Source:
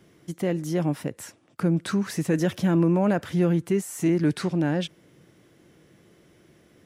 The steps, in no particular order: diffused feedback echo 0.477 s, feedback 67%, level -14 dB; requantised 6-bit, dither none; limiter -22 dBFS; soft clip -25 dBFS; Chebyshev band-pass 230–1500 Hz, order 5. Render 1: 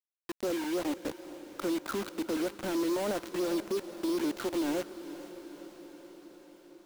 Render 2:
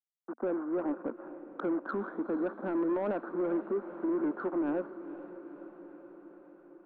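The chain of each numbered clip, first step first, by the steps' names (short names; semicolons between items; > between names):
Chebyshev band-pass > limiter > requantised > soft clip > diffused feedback echo; requantised > Chebyshev band-pass > limiter > soft clip > diffused feedback echo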